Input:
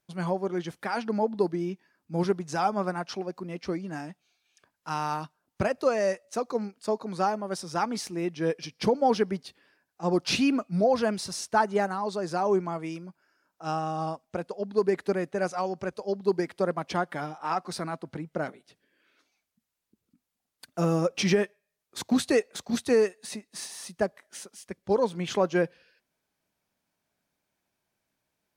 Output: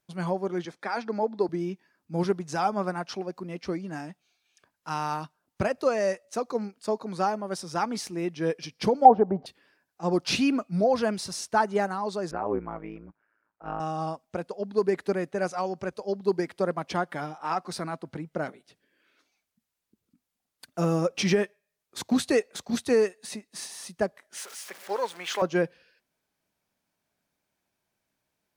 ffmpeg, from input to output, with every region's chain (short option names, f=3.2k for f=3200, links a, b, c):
-filter_complex "[0:a]asettb=1/sr,asplit=3[a][b][c];[a]atrim=end=0.654[d];[b]atrim=start=0.65:end=1.49,asetpts=PTS-STARTPTS,afade=t=in:d=0.004:c=qsin,afade=t=out:st=0.836:d=0.004:c=qsin,acrossover=split=220 7800:gain=0.224 1 0.158[e][f][g];[e][f][g]amix=inputs=3:normalize=0,bandreject=f=2.9k:w=5.8[h];[c]atrim=start=1.486[i];[d][h]acrossfade=d=0.004:c1=hsin:c2=qsin[j];[j][i]acrossfade=d=0.004:c1=qsin:c2=hsin,asettb=1/sr,asplit=3[k][l][m];[k]atrim=end=9.054[n];[l]atrim=start=9.05:end=9.46,asetpts=PTS-STARTPTS,afade=t=in:d=0.004:c=qsin,afade=t=out:st=0.406:d=0.004:c=qsin,lowpass=f=750:t=q:w=4.7,acompressor=mode=upward:threshold=-19dB:ratio=2.5:attack=3.2:release=140:knee=2.83:detection=peak[o];[m]atrim=start=9.456[p];[n][o]acrossfade=d=0.004:c1=hsin:c2=qsin[q];[q][p]acrossfade=d=0.004:c1=qsin:c2=hsin,asettb=1/sr,asplit=3[r][s][t];[r]atrim=end=12.314[u];[s]atrim=start=12.31:end=13.8,asetpts=PTS-STARTPTS,afade=t=in:d=0.004:c=qsin,afade=t=out:st=1.486:d=0.004:c=qsin,lowpass=f=2.1k:w=0.5412,lowpass=f=2.1k:w=1.3066,aemphasis=mode=production:type=75fm,tremolo=f=110:d=0.919[v];[t]atrim=start=13.796[w];[u][v]acrossfade=d=0.004:c1=hsin:c2=qsin[x];[x][w]acrossfade=d=0.004:c1=qsin:c2=hsin,asettb=1/sr,asplit=3[y][z][aa];[y]atrim=end=24.374[ab];[z]atrim=start=24.37:end=25.42,asetpts=PTS-STARTPTS,afade=t=in:d=0.004:c=qsin,afade=t=out:st=1.046:d=0.004:c=qsin,aeval=exprs='val(0)+0.5*0.0106*sgn(val(0))':c=same,highpass=650,equalizer=f=1.8k:w=1.2:g=4[ac];[aa]atrim=start=25.416[ad];[ab][ac]acrossfade=d=0.004:c1=hsin:c2=qsin[ae];[ae][ad]acrossfade=d=0.004:c1=qsin:c2=hsin"